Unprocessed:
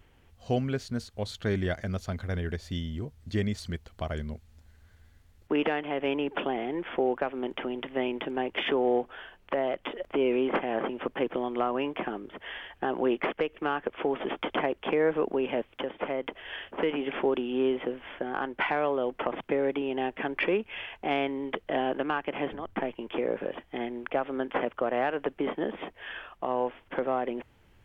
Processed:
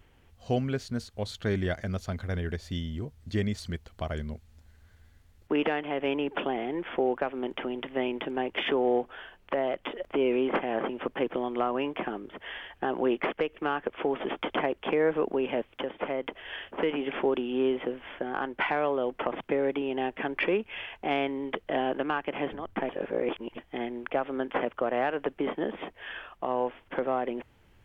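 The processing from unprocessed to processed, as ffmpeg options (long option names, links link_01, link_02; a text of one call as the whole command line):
ffmpeg -i in.wav -filter_complex "[0:a]asplit=3[link_01][link_02][link_03];[link_01]atrim=end=22.892[link_04];[link_02]atrim=start=22.888:end=23.582,asetpts=PTS-STARTPTS,areverse[link_05];[link_03]atrim=start=23.578[link_06];[link_04][link_05]acrossfade=duration=0.004:curve1=hsin:curve2=hsin[link_07];[link_07][link_06]acrossfade=duration=0.004:curve1=hsin:curve2=hsin" out.wav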